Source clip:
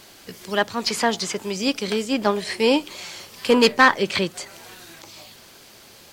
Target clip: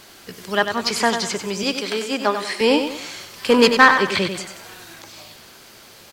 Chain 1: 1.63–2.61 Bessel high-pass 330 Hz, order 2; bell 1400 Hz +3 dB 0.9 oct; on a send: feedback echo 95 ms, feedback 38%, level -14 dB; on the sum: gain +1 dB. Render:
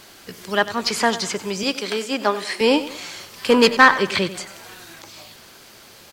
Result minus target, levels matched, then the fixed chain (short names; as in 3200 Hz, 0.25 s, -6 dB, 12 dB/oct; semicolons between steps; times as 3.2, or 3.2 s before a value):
echo-to-direct -6.5 dB
1.63–2.61 Bessel high-pass 330 Hz, order 2; bell 1400 Hz +3 dB 0.9 oct; on a send: feedback echo 95 ms, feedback 38%, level -7.5 dB; on the sum: gain +1 dB